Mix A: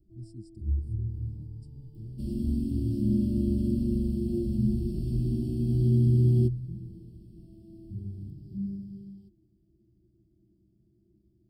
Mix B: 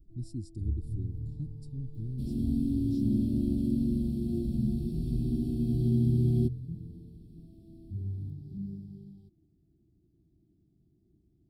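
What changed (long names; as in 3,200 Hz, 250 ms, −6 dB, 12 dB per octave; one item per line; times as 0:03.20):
speech +9.5 dB
master: remove EQ curve with evenly spaced ripples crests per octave 1.3, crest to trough 11 dB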